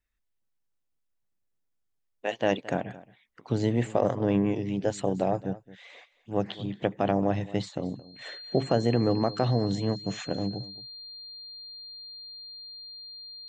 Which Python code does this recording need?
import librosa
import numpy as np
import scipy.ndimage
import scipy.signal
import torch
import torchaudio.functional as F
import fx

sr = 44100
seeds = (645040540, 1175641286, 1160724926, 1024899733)

y = fx.notch(x, sr, hz=4200.0, q=30.0)
y = fx.fix_echo_inverse(y, sr, delay_ms=221, level_db=-18.5)